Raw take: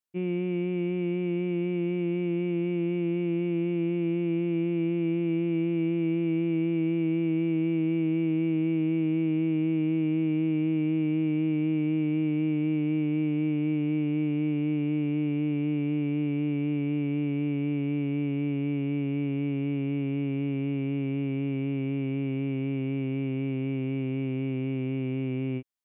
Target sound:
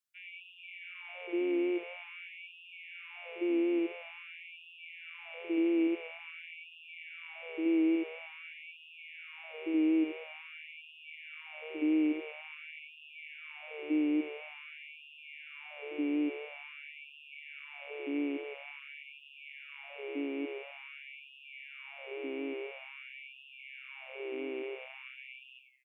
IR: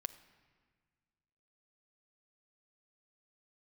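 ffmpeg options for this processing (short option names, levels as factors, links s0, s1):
-filter_complex "[0:a]asplit=5[s0][s1][s2][s3][s4];[s1]adelay=84,afreqshift=-79,volume=0.422[s5];[s2]adelay=168,afreqshift=-158,volume=0.143[s6];[s3]adelay=252,afreqshift=-237,volume=0.049[s7];[s4]adelay=336,afreqshift=-316,volume=0.0166[s8];[s0][s5][s6][s7][s8]amix=inputs=5:normalize=0,afftfilt=real='re*gte(b*sr/1024,270*pow(2500/270,0.5+0.5*sin(2*PI*0.48*pts/sr)))':imag='im*gte(b*sr/1024,270*pow(2500/270,0.5+0.5*sin(2*PI*0.48*pts/sr)))':win_size=1024:overlap=0.75"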